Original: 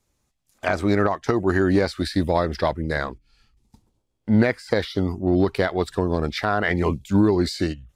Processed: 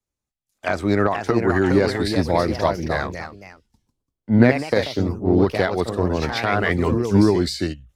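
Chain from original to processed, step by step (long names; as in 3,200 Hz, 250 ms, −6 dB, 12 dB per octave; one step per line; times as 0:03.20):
delay with pitch and tempo change per echo 556 ms, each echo +2 semitones, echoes 2, each echo −6 dB
multiband upward and downward expander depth 40%
level +1 dB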